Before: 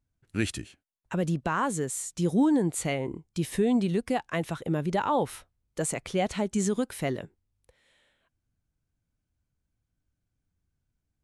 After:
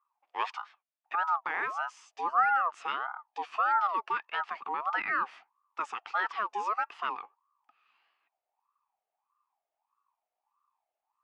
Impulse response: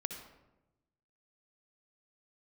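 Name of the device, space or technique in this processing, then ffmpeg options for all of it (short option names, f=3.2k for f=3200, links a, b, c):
voice changer toy: -af "aeval=exprs='val(0)*sin(2*PI*870*n/s+870*0.3/1.6*sin(2*PI*1.6*n/s))':c=same,highpass=520,equalizer=f=540:t=q:w=4:g=-10,equalizer=f=860:t=q:w=4:g=4,equalizer=f=1.2k:t=q:w=4:g=9,equalizer=f=1.8k:t=q:w=4:g=4,equalizer=f=2.6k:t=q:w=4:g=6,equalizer=f=4k:t=q:w=4:g=-6,lowpass=f=4.6k:w=0.5412,lowpass=f=4.6k:w=1.3066,volume=-4.5dB"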